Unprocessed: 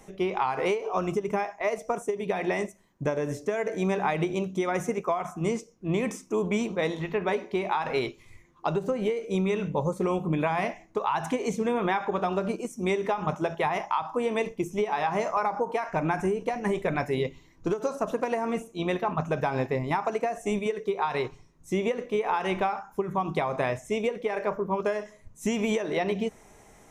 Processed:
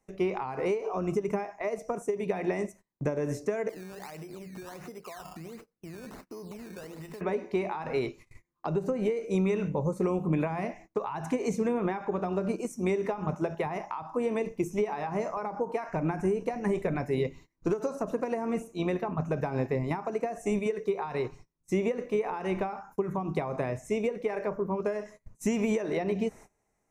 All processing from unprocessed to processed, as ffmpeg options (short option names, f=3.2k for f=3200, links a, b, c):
-filter_complex "[0:a]asettb=1/sr,asplit=3[a][b][c];[a]atrim=end=3.694[d];[b]atrim=start=3.69:end=7.21,asetpts=PTS-STARTPTS,afade=t=in:d=0.004:c=qsin,afade=t=out:st=3.516:d=0.004:c=qsin,acompressor=threshold=-39dB:ratio=12:attack=3.2:release=140:knee=1:detection=peak,acrusher=samples=15:mix=1:aa=0.000001:lfo=1:lforange=15:lforate=1.4[e];[c]atrim=start=7.206[f];[d][e]acrossfade=d=0.004:c1=hsin:c2=qsin[g];[g][f]acrossfade=d=0.004:c1=qsin:c2=hsin,agate=range=-23dB:threshold=-47dB:ratio=16:detection=peak,equalizer=f=3.3k:t=o:w=0.2:g=-13,acrossover=split=500[h][i];[i]acompressor=threshold=-35dB:ratio=6[j];[h][j]amix=inputs=2:normalize=0"